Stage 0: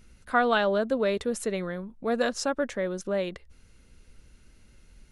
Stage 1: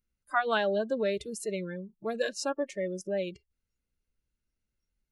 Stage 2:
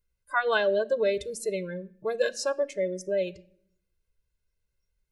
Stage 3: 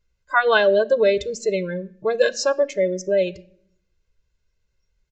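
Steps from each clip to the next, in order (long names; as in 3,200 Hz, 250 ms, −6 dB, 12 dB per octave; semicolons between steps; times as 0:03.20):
noise reduction from a noise print of the clip's start 26 dB; level −3 dB
convolution reverb RT60 0.60 s, pre-delay 4 ms, DRR 18 dB
downsampling to 16,000 Hz; level +8 dB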